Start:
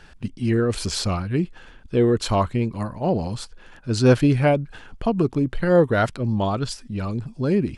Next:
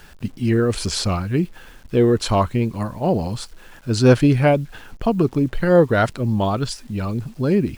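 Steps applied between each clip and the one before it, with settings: bit-crush 9-bit; gain +2.5 dB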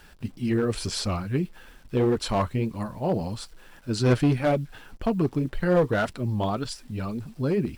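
notch 6600 Hz, Q 17; flange 1.8 Hz, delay 3.1 ms, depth 5 ms, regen -48%; one-sided clip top -17 dBFS; gain -2 dB

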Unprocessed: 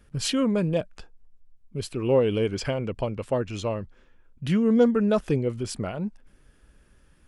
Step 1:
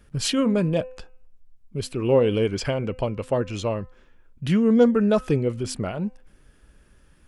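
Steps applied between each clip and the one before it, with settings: de-hum 256 Hz, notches 11; gain +2.5 dB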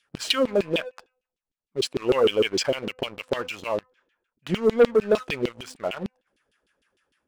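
bell 9000 Hz +14.5 dB 2.6 oct; LFO band-pass saw down 6.6 Hz 300–3600 Hz; sample leveller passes 2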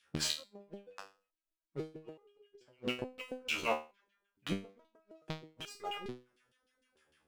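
flipped gate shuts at -16 dBFS, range -39 dB; stepped resonator 2.3 Hz 77–410 Hz; gain +8 dB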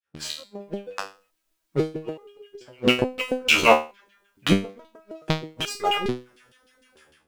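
opening faded in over 0.56 s; AGC gain up to 12 dB; gain +5.5 dB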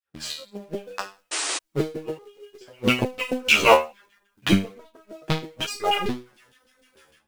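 in parallel at -7.5 dB: companded quantiser 4-bit; on the sum: painted sound noise, 1.31–1.58, 280–9600 Hz -24 dBFS; chorus voices 2, 0.67 Hz, delay 12 ms, depth 3.1 ms

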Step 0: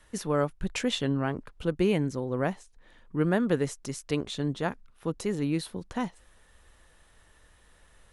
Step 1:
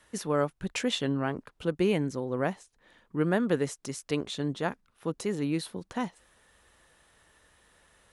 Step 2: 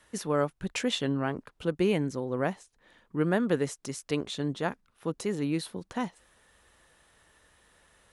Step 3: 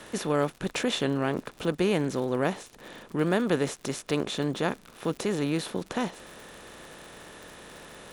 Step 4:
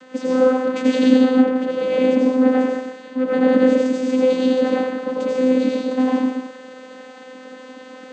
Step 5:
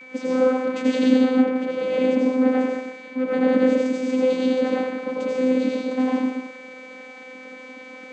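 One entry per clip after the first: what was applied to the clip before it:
HPF 140 Hz 6 dB/oct
nothing audible
per-bin compression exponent 0.6; crackle 75/s -35 dBFS; gain -1 dB
reverb, pre-delay 78 ms, DRR -5 dB; vocoder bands 16, saw 257 Hz; gain +6.5 dB
whine 2300 Hz -38 dBFS; gain -3.5 dB

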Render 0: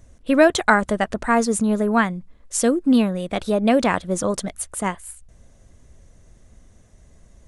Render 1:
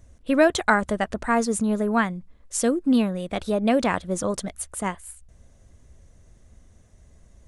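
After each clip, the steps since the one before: bell 74 Hz +4 dB; gain -3.5 dB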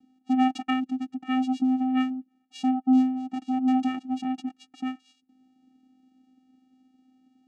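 spectral gain 0.79–1.19, 230–2000 Hz -11 dB; vocoder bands 4, square 258 Hz; small resonant body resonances 540/2800 Hz, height 10 dB, ringing for 45 ms; gain -2 dB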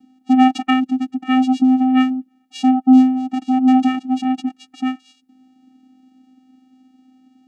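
harmonic-percussive split harmonic +8 dB; gain +2 dB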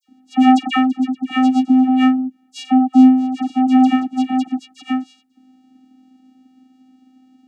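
dispersion lows, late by 82 ms, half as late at 1800 Hz; gain +1 dB

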